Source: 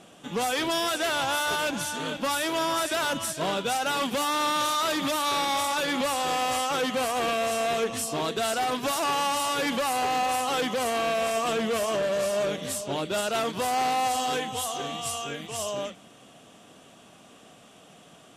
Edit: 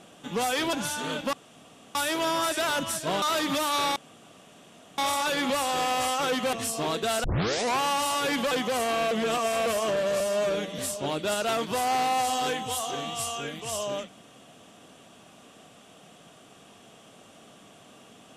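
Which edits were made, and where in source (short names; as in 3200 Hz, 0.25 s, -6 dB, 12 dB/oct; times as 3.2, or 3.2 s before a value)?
0.73–1.69 cut
2.29 insert room tone 0.62 s
3.56–4.75 cut
5.49 insert room tone 1.02 s
7.04–7.87 cut
8.58 tape start 0.56 s
9.85–10.57 cut
11.17–11.72 reverse
12.26–12.65 stretch 1.5×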